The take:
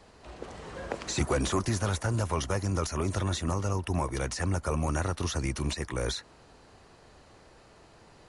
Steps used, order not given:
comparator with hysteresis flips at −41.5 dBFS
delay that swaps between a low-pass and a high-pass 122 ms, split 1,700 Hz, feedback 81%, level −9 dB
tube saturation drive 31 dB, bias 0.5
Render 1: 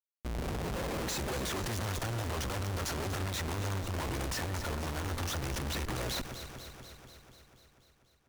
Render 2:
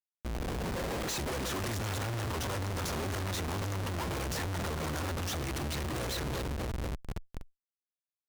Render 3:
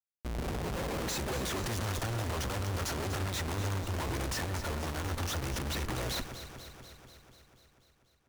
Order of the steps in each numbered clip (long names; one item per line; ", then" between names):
comparator with hysteresis, then delay that swaps between a low-pass and a high-pass, then tube saturation
delay that swaps between a low-pass and a high-pass, then comparator with hysteresis, then tube saturation
comparator with hysteresis, then tube saturation, then delay that swaps between a low-pass and a high-pass